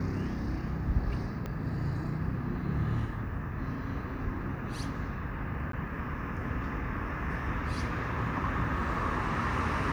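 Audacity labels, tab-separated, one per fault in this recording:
1.460000	1.460000	click −24 dBFS
5.720000	5.730000	drop-out 13 ms

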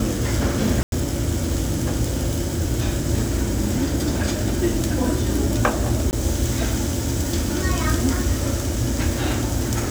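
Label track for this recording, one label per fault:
0.830000	0.920000	drop-out 92 ms
6.110000	6.130000	drop-out 19 ms

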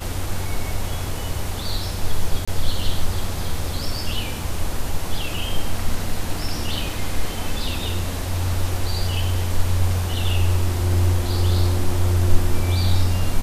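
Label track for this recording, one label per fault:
2.450000	2.480000	drop-out 25 ms

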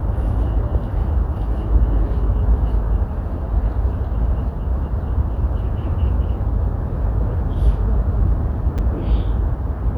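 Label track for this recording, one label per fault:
8.780000	8.790000	drop-out 6.4 ms

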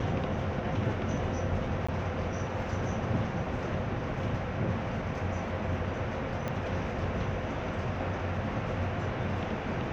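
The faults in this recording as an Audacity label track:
1.870000	1.890000	drop-out 15 ms
6.480000	6.480000	click −20 dBFS

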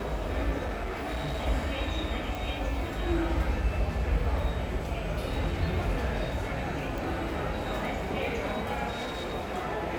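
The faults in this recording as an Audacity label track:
0.640000	1.460000	clipping −29 dBFS
2.350000	2.350000	click
6.980000	6.980000	click
8.900000	9.340000	clipping −31 dBFS

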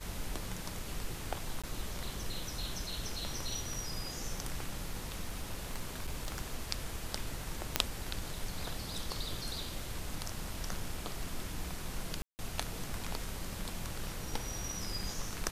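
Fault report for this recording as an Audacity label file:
1.620000	1.640000	drop-out 16 ms
4.860000	6.400000	clipping −31.5 dBFS
7.760000	7.760000	click −8 dBFS
12.220000	12.390000	drop-out 169 ms

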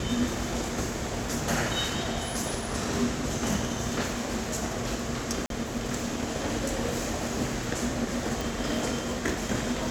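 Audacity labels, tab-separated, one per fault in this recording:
5.460000	5.500000	drop-out 42 ms
8.410000	8.410000	click

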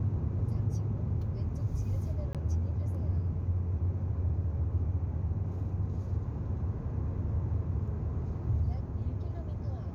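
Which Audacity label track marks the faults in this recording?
2.330000	2.350000	drop-out 17 ms

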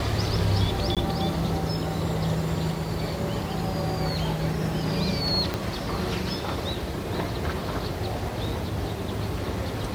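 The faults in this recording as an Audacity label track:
0.950000	0.970000	drop-out 17 ms
5.540000	5.540000	click −13 dBFS

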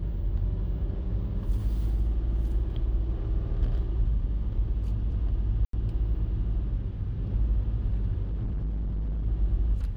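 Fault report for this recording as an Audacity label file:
5.650000	5.730000	drop-out 83 ms
8.220000	9.260000	clipping −27 dBFS

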